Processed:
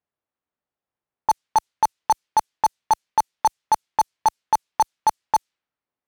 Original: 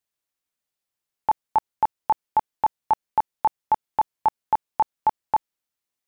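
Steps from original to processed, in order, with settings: high-pass 50 Hz 6 dB/octave; treble shelf 2.1 kHz +11.5 dB; in parallel at -4 dB: integer overflow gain 20.5 dB; on the sum: level-controlled noise filter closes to 970 Hz, open at -15 dBFS

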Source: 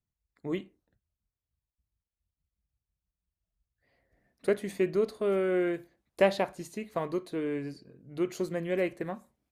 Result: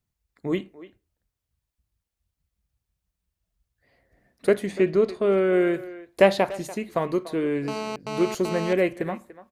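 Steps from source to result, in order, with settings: 4.66–5.53 s: distance through air 60 m; speakerphone echo 290 ms, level -16 dB; 7.68–8.73 s: mobile phone buzz -38 dBFS; trim +7 dB

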